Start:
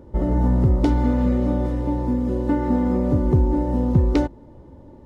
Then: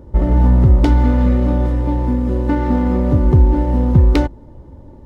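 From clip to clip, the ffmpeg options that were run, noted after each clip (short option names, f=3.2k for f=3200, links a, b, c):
-filter_complex "[0:a]asplit=2[a][b];[b]adynamicsmooth=sensitivity=5.5:basefreq=1.2k,volume=1dB[c];[a][c]amix=inputs=2:normalize=0,equalizer=f=350:w=0.33:g=-8,volume=4dB"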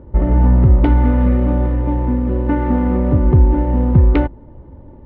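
-af "lowpass=f=2.8k:w=0.5412,lowpass=f=2.8k:w=1.3066"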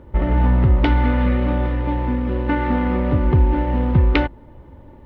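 -af "tiltshelf=f=1.5k:g=-9,volume=4.5dB"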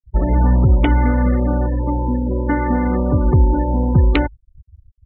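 -filter_complex "[0:a]afftfilt=real='re*gte(hypot(re,im),0.0794)':imag='im*gte(hypot(re,im),0.0794)':win_size=1024:overlap=0.75,acrossover=split=400[a][b];[b]acompressor=threshold=-21dB:ratio=2[c];[a][c]amix=inputs=2:normalize=0,volume=2dB"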